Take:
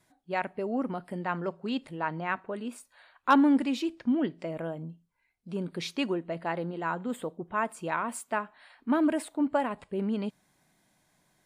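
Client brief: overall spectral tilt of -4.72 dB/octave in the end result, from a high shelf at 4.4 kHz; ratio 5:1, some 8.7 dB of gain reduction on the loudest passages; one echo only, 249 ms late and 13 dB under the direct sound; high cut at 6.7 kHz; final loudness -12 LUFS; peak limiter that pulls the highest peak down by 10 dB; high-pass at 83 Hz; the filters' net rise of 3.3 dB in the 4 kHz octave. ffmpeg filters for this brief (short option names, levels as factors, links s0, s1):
-af "highpass=83,lowpass=6700,equalizer=f=4000:t=o:g=6.5,highshelf=f=4400:g=-3.5,acompressor=threshold=0.0447:ratio=5,alimiter=level_in=1.33:limit=0.0631:level=0:latency=1,volume=0.75,aecho=1:1:249:0.224,volume=16.8"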